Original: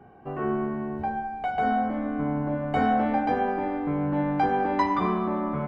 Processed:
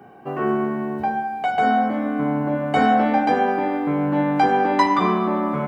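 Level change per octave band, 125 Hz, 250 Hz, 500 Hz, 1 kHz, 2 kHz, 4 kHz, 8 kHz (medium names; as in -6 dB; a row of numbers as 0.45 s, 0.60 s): +3.0 dB, +5.5 dB, +6.0 dB, +6.5 dB, +7.5 dB, +10.5 dB, no reading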